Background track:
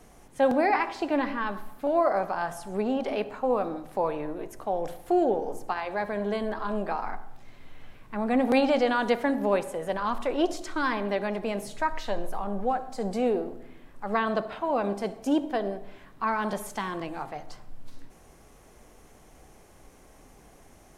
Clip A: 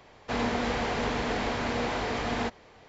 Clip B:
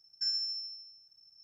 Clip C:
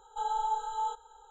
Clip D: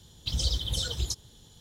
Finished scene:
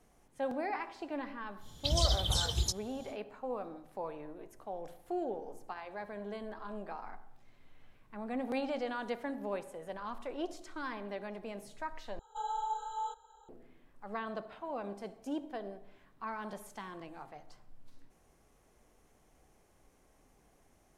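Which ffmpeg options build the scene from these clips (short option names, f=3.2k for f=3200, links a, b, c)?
-filter_complex "[0:a]volume=-13dB[a];[4:a]aresample=32000,aresample=44100[b];[a]asplit=2[c][d];[c]atrim=end=12.194[e];[3:a]atrim=end=1.3,asetpts=PTS-STARTPTS,volume=-5dB[f];[d]atrim=start=13.486[g];[b]atrim=end=1.6,asetpts=PTS-STARTPTS,volume=-1dB,afade=t=in:d=0.1,afade=t=out:st=1.5:d=0.1,adelay=1580[h];[e][f]acrossfade=d=0.004:c1=hsin:c2=hsin[i];[i][g]acrossfade=d=0.004:c1=hsin:c2=hsin[j];[j][h]amix=inputs=2:normalize=0"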